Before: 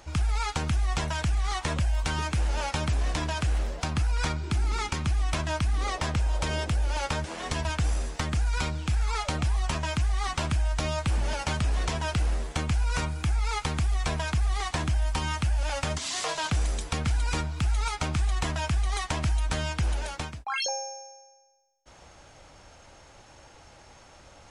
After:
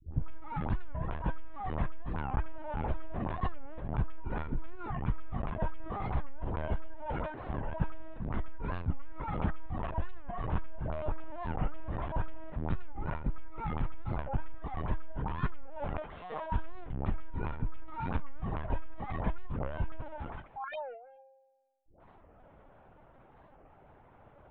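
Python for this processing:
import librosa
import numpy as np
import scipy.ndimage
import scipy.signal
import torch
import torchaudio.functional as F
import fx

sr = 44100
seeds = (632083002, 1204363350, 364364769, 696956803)

p1 = scipy.signal.sosfilt(scipy.signal.butter(2, 1200.0, 'lowpass', fs=sr, output='sos'), x)
p2 = fx.dispersion(p1, sr, late='highs', ms=147.0, hz=540.0)
p3 = p2 + fx.echo_feedback(p2, sr, ms=198, feedback_pct=25, wet_db=-16.5, dry=0)
p4 = fx.lpc_vocoder(p3, sr, seeds[0], excitation='pitch_kept', order=16)
p5 = fx.record_warp(p4, sr, rpm=45.0, depth_cents=250.0)
y = p5 * 10.0 ** (-4.5 / 20.0)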